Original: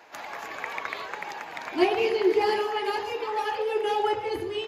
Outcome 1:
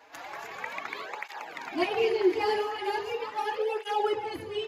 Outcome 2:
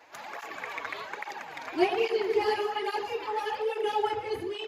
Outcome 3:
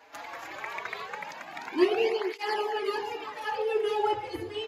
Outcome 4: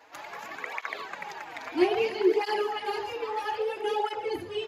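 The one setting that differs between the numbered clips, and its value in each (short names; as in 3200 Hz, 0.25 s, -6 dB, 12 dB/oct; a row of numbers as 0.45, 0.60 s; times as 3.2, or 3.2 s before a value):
tape flanging out of phase, nulls at: 0.39, 1.2, 0.21, 0.61 Hz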